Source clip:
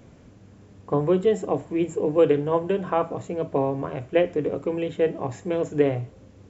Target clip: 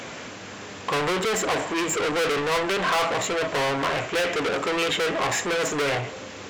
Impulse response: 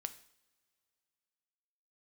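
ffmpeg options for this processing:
-filter_complex "[0:a]asplit=2[s0][s1];[s1]highpass=f=720:p=1,volume=79.4,asoftclip=type=tanh:threshold=0.447[s2];[s0][s2]amix=inputs=2:normalize=0,lowpass=f=3400:p=1,volume=0.501,tiltshelf=f=970:g=-6.5,volume=0.398"

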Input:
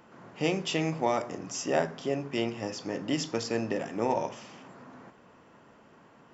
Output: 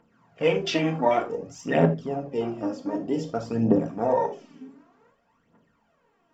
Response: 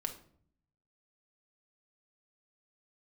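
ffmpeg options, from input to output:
-filter_complex "[0:a]aphaser=in_gain=1:out_gain=1:delay=3.9:decay=0.71:speed=0.54:type=triangular,afwtdn=0.02[s0];[1:a]atrim=start_sample=2205,atrim=end_sample=4410,asetrate=48510,aresample=44100[s1];[s0][s1]afir=irnorm=-1:irlink=0,volume=1.58"

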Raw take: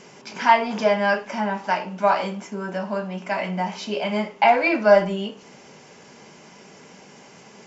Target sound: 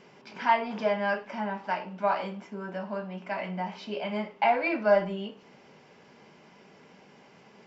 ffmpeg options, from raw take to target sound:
-af "equalizer=f=6800:w=1.8:g=-14,volume=0.422"

